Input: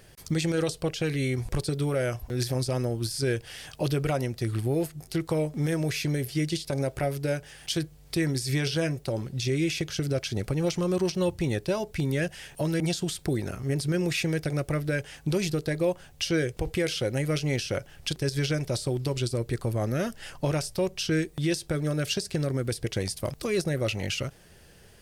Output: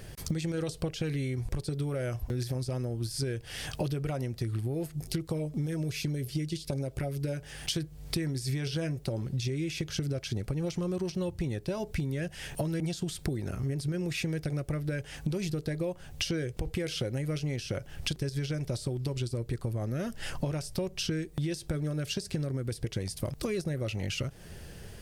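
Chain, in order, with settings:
low-shelf EQ 280 Hz +7 dB
downward compressor 10 to 1, threshold −33 dBFS, peak gain reduction 16 dB
0:04.95–0:07.37: auto-filter notch sine 8.6 Hz 670–2,000 Hz
level +4 dB

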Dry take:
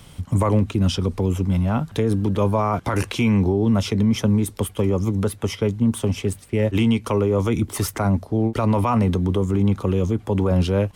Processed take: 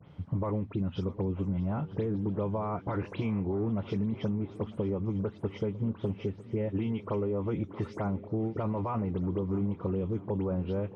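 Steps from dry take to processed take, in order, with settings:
every frequency bin delayed by itself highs late, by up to 101 ms
high-pass filter 110 Hz
downward compressor, threshold −22 dBFS, peak gain reduction 8 dB
head-to-tape spacing loss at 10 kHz 42 dB
on a send: echo machine with several playback heads 317 ms, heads second and third, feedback 44%, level −19 dB
on the sum: level −4 dB

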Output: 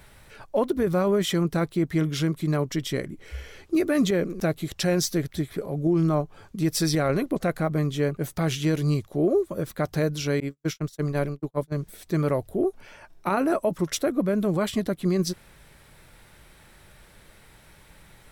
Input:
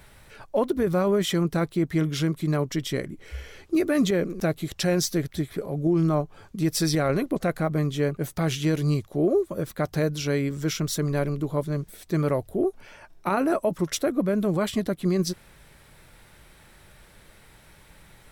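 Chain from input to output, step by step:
0:10.40–0:11.72: noise gate −25 dBFS, range −55 dB

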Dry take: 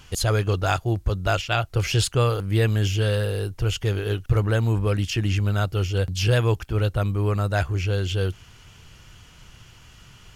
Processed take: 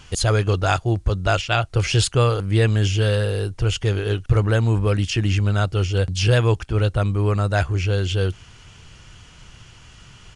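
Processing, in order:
downsampling to 22,050 Hz
level +3 dB

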